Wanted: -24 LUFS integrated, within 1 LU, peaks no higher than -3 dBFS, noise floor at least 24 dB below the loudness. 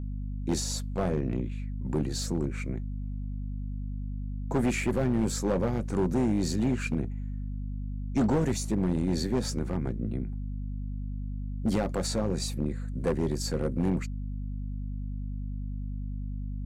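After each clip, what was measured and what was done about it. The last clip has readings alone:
clipped samples 1.6%; clipping level -20.5 dBFS; hum 50 Hz; highest harmonic 250 Hz; hum level -32 dBFS; loudness -31.0 LUFS; peak level -20.5 dBFS; loudness target -24.0 LUFS
-> clip repair -20.5 dBFS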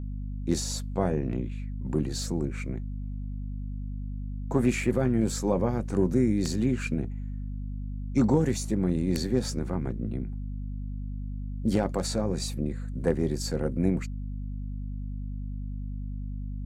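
clipped samples 0.0%; hum 50 Hz; highest harmonic 250 Hz; hum level -31 dBFS
-> de-hum 50 Hz, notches 5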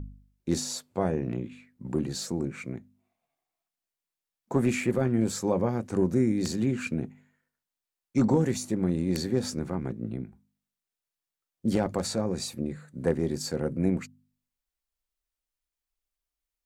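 hum not found; loudness -29.0 LUFS; peak level -11.5 dBFS; loudness target -24.0 LUFS
-> trim +5 dB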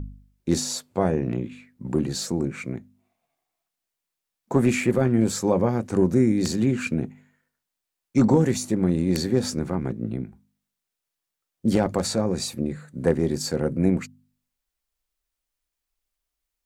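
loudness -24.0 LUFS; peak level -6.5 dBFS; noise floor -85 dBFS

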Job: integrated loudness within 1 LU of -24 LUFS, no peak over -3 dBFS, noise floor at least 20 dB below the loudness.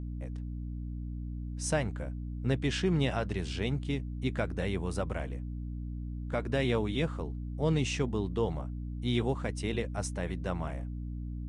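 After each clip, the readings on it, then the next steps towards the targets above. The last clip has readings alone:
hum 60 Hz; highest harmonic 300 Hz; hum level -35 dBFS; loudness -33.5 LUFS; peak level -15.5 dBFS; loudness target -24.0 LUFS
-> de-hum 60 Hz, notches 5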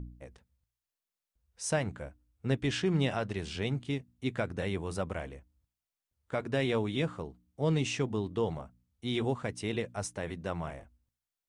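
hum not found; loudness -34.0 LUFS; peak level -16.5 dBFS; loudness target -24.0 LUFS
-> trim +10 dB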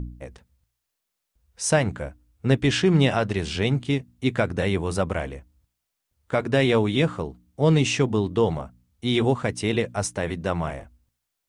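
loudness -24.0 LUFS; peak level -6.5 dBFS; noise floor -81 dBFS

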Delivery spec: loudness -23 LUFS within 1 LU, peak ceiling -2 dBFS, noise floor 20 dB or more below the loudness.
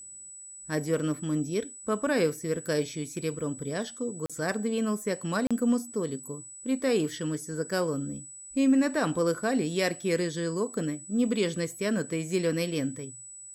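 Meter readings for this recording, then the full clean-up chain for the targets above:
dropouts 2; longest dropout 36 ms; steady tone 7.9 kHz; tone level -43 dBFS; loudness -29.5 LUFS; peak level -15.0 dBFS; loudness target -23.0 LUFS
-> interpolate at 4.26/5.47 s, 36 ms; band-stop 7.9 kHz, Q 30; trim +6.5 dB

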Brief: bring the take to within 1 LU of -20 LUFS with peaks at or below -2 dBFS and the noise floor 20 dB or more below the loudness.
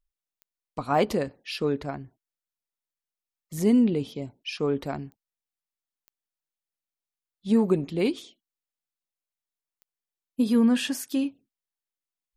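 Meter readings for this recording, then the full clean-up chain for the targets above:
clicks found 4; loudness -26.0 LUFS; peak level -10.0 dBFS; loudness target -20.0 LUFS
-> de-click; trim +6 dB

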